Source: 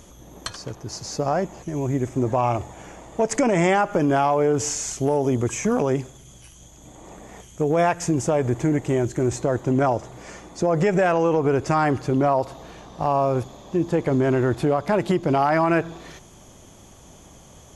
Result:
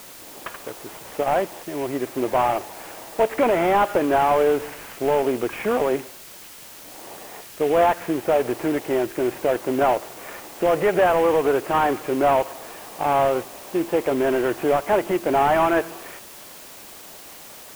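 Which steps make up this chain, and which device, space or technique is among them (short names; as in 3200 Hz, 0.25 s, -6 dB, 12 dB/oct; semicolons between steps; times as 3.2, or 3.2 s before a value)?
army field radio (BPF 390–2900 Hz; CVSD 16 kbps; white noise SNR 20 dB); gain +4.5 dB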